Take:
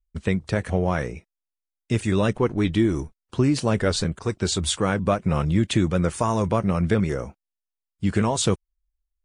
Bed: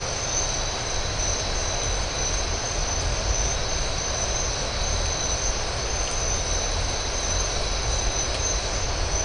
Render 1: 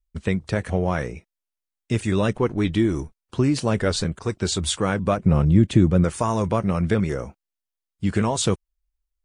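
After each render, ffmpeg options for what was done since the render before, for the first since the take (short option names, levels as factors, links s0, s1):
-filter_complex "[0:a]asettb=1/sr,asplit=3[s0][s1][s2];[s0]atrim=end=5.174[s3];[s1]atrim=start=5.17:end=6.04,asetpts=PTS-STARTPTS,afade=t=in:d=0.004:c=qsin,afade=t=out:st=0.866:d=0.004:c=qsin,tiltshelf=f=690:g=6[s4];[s2]atrim=start=6.036[s5];[s3][s4]acrossfade=d=0.004:c1=hsin:c2=qsin[s6];[s6][s5]acrossfade=d=0.004:c1=qsin:c2=hsin"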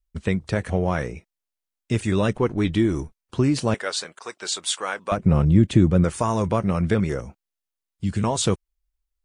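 -filter_complex "[0:a]asettb=1/sr,asplit=3[s0][s1][s2];[s0]atrim=end=3.744[s3];[s1]atrim=start=3.74:end=5.12,asetpts=PTS-STARTPTS,afade=t=in:d=0.004:c=qsin,afade=t=out:st=1.376:d=0.004:c=qsin,highpass=730[s4];[s2]atrim=start=5.116[s5];[s3][s4]acrossfade=d=0.004:c1=hsin:c2=qsin[s6];[s6][s5]acrossfade=d=0.004:c1=qsin:c2=hsin,asettb=1/sr,asplit=3[s7][s8][s9];[s7]atrim=end=7.204[s10];[s8]atrim=start=7.2:end=8.24,asetpts=PTS-STARTPTS,afade=t=in:d=0.004:c=qsin,afade=t=out:st=1.036:d=0.004:c=qsin,acrossover=split=240|3000[s11][s12][s13];[s12]acompressor=threshold=0.0112:ratio=6:attack=3.2:release=140:knee=2.83:detection=peak[s14];[s11][s14][s13]amix=inputs=3:normalize=0[s15];[s9]atrim=start=8.236[s16];[s10][s15]acrossfade=d=0.004:c1=hsin:c2=qsin[s17];[s17][s16]acrossfade=d=0.004:c1=qsin:c2=hsin"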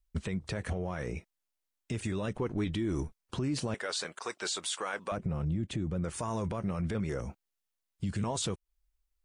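-af "acompressor=threshold=0.0501:ratio=6,alimiter=level_in=1.06:limit=0.0631:level=0:latency=1:release=14,volume=0.944"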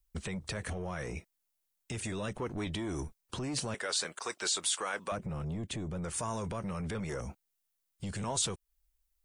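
-filter_complex "[0:a]acrossover=split=670|1000[s0][s1][s2];[s0]asoftclip=type=tanh:threshold=0.0211[s3];[s3][s1][s2]amix=inputs=3:normalize=0,crystalizer=i=1:c=0"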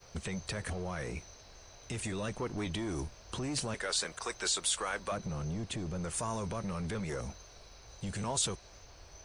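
-filter_complex "[1:a]volume=0.0376[s0];[0:a][s0]amix=inputs=2:normalize=0"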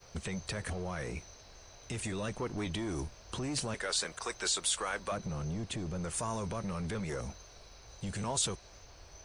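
-af anull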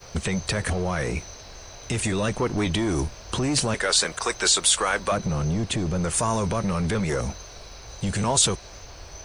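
-af "volume=3.98"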